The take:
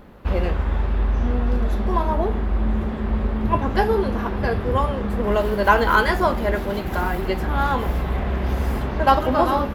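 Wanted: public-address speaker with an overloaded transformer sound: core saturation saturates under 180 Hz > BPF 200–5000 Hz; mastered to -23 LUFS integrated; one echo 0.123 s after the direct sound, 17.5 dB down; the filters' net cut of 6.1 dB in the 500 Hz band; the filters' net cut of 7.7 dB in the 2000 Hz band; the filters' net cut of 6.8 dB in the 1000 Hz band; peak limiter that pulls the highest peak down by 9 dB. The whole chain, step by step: bell 500 Hz -6 dB; bell 1000 Hz -4.5 dB; bell 2000 Hz -8.5 dB; limiter -17 dBFS; echo 0.123 s -17.5 dB; core saturation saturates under 180 Hz; BPF 200–5000 Hz; gain +10.5 dB

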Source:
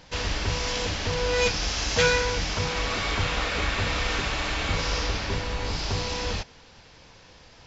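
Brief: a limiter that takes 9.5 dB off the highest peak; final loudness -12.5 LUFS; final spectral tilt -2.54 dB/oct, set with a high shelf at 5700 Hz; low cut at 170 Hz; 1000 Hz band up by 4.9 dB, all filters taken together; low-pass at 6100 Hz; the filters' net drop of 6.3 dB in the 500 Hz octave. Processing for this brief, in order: HPF 170 Hz; LPF 6100 Hz; bell 500 Hz -8.5 dB; bell 1000 Hz +8 dB; high shelf 5700 Hz -5 dB; gain +16.5 dB; limiter -3.5 dBFS

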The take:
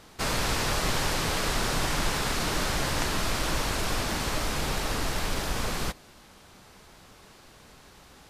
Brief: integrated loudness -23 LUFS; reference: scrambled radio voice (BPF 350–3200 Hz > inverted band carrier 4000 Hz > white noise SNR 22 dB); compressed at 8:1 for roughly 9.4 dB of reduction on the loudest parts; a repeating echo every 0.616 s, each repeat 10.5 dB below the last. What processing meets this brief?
compressor 8:1, threshold -33 dBFS; BPF 350–3200 Hz; feedback echo 0.616 s, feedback 30%, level -10.5 dB; inverted band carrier 4000 Hz; white noise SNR 22 dB; gain +16 dB

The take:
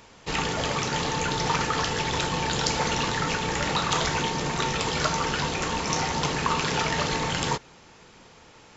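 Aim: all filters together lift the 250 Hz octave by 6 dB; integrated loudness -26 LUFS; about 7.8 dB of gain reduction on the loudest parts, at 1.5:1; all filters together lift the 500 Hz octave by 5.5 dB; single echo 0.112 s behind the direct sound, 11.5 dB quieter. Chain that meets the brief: bell 250 Hz +7 dB; bell 500 Hz +4.5 dB; compressor 1.5:1, threshold -41 dBFS; echo 0.112 s -11.5 dB; gain +5 dB

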